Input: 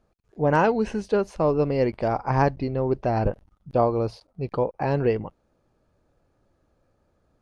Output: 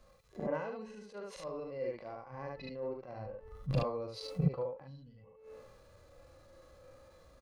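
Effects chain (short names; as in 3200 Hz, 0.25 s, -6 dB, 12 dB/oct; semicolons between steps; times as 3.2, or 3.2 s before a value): tilt shelf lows -4 dB, about 660 Hz; de-hum 438.7 Hz, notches 7; compressor 2.5:1, threshold -26 dBFS, peak gain reduction 8 dB; small resonant body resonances 530/1100/2000/4000 Hz, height 10 dB; flipped gate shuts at -29 dBFS, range -32 dB; on a send: early reflections 38 ms -15 dB, 73 ms -5 dB; on the sum: spectral gain 4.87–5.17, 290–2900 Hz -23 dB; transient shaper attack -11 dB, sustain +3 dB; harmonic-percussive split percussive -18 dB; three-band expander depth 70%; gain +17 dB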